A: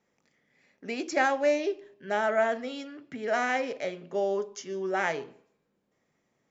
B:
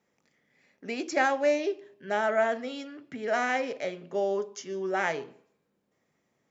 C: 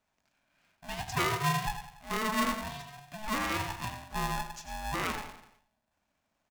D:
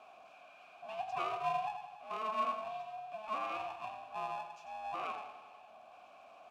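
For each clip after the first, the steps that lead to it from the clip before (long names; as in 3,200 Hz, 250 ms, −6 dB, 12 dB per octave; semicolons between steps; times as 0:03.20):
high-pass filter 46 Hz
repeating echo 95 ms, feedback 45%, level −9 dB; ring modulator with a square carrier 430 Hz; level −5 dB
converter with a step at zero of −43.5 dBFS; formant filter a; level +3.5 dB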